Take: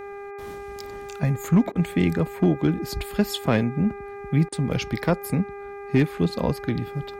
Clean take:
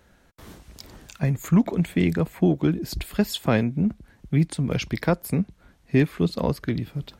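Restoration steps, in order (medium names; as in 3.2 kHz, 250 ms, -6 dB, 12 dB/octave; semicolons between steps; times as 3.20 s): clip repair -10.5 dBFS; de-hum 402.3 Hz, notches 6; interpolate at 1.72/4.49 s, 32 ms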